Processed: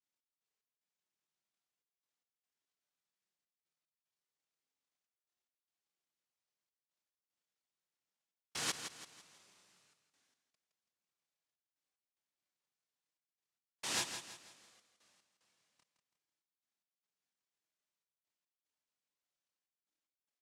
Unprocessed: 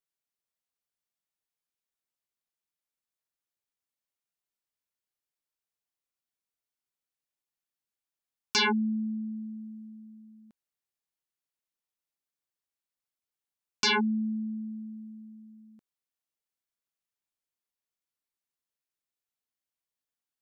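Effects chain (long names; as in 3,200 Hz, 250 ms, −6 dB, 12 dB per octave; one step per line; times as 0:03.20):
tilt shelving filter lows −4 dB
downward compressor 4 to 1, threshold −40 dBFS, peak gain reduction 16.5 dB
four-pole ladder band-pass 960 Hz, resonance 80%
cochlear-implant simulation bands 1
multi-voice chorus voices 4, 0.11 Hz, delay 29 ms, depth 3.7 ms
gate pattern "x.x.xxxx" 74 BPM
on a send: repeating echo 165 ms, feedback 39%, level −9 dB
on the sum: every ending faded ahead of time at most 450 dB per second
level +15 dB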